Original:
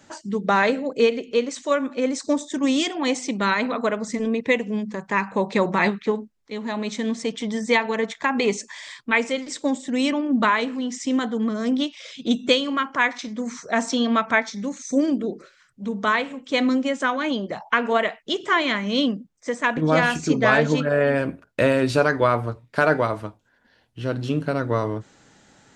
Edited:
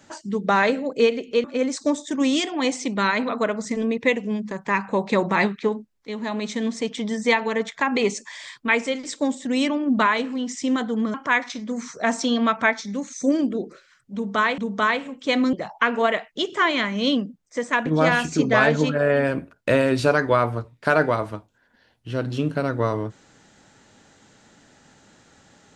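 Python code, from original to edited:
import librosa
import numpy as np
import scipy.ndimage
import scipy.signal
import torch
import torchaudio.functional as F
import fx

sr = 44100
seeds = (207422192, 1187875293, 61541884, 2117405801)

y = fx.edit(x, sr, fx.cut(start_s=1.44, length_s=0.43),
    fx.cut(start_s=11.57, length_s=1.26),
    fx.repeat(start_s=15.83, length_s=0.44, count=2),
    fx.cut(start_s=16.78, length_s=0.66), tone=tone)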